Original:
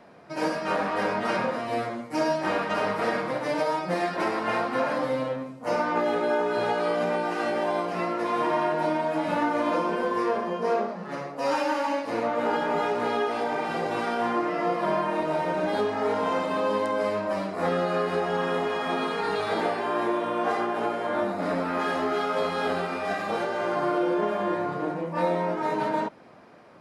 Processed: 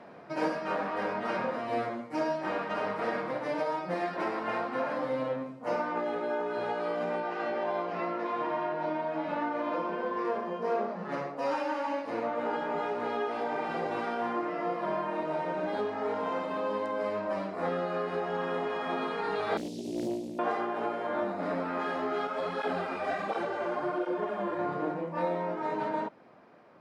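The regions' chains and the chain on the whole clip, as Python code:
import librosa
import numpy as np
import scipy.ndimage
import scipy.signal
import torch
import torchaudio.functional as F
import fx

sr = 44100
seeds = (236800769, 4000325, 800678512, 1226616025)

y = fx.chain(x, sr, fx.lowpass(hz=5300.0, slope=12),
    fx.hum_notches(base_hz=60, count=9), at=(7.2, 10.25))
y = fx.chain(y, sr, fx.cheby1_bandstop(low_hz=290.0, high_hz=5500.0, order=3),
    fx.high_shelf(hz=2100.0, db=11.0),
    fx.doppler_dist(depth_ms=0.6), at=(19.57, 20.39))
y = fx.chain(y, sr, fx.peak_eq(hz=8000.0, db=3.0, octaves=0.34),
    fx.flanger_cancel(hz=1.4, depth_ms=7.9), at=(22.27, 24.59))
y = fx.lowpass(y, sr, hz=2700.0, slope=6)
y = fx.low_shelf(y, sr, hz=81.0, db=-11.5)
y = fx.rider(y, sr, range_db=10, speed_s=0.5)
y = y * librosa.db_to_amplitude(-4.5)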